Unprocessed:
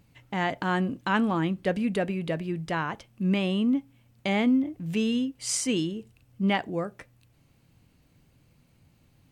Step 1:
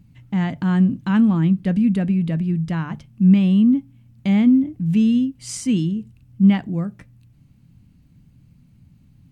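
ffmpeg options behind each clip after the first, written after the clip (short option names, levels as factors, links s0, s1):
-af "lowshelf=f=300:t=q:w=1.5:g=12.5,bandreject=f=50:t=h:w=6,bandreject=f=100:t=h:w=6,bandreject=f=150:t=h:w=6,volume=0.75"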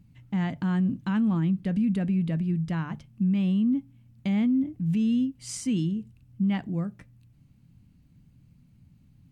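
-af "alimiter=limit=0.211:level=0:latency=1:release=35,volume=0.531"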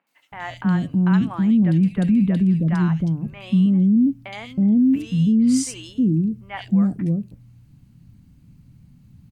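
-filter_complex "[0:a]acrossover=split=530|2600[s0][s1][s2];[s2]adelay=70[s3];[s0]adelay=320[s4];[s4][s1][s3]amix=inputs=3:normalize=0,volume=2.51"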